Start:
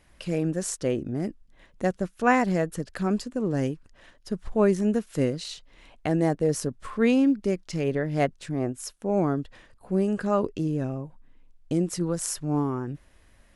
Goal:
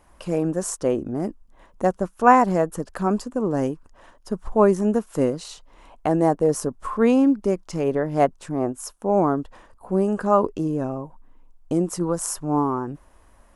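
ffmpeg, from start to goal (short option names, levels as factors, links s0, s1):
-af "equalizer=f=125:t=o:w=1:g=-6,equalizer=f=1000:t=o:w=1:g=9,equalizer=f=2000:t=o:w=1:g=-7,equalizer=f=4000:t=o:w=1:g=-7,volume=1.58"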